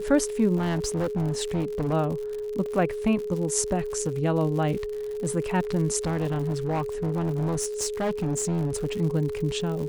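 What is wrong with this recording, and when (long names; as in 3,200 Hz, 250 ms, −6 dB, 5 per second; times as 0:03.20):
surface crackle 120 per second −33 dBFS
whistle 420 Hz −29 dBFS
0:00.56–0:01.94: clipping −22.5 dBFS
0:02.66: drop-out 2.2 ms
0:06.05–0:08.86: clipping −22.5 dBFS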